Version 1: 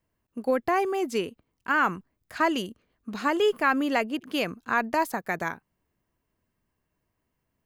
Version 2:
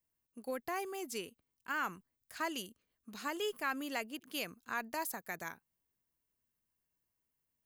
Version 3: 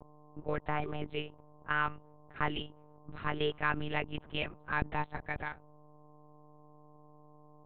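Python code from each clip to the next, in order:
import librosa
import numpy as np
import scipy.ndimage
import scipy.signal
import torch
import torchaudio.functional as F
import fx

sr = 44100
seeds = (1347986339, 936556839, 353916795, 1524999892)

y1 = librosa.effects.preemphasis(x, coef=0.8, zi=[0.0])
y1 = y1 * 10.0 ** (-1.5 / 20.0)
y2 = fx.env_lowpass(y1, sr, base_hz=870.0, full_db=-34.5)
y2 = fx.dmg_buzz(y2, sr, base_hz=120.0, harmonics=9, level_db=-62.0, tilt_db=-3, odd_only=False)
y2 = fx.lpc_monotone(y2, sr, seeds[0], pitch_hz=150.0, order=8)
y2 = y2 * 10.0 ** (5.0 / 20.0)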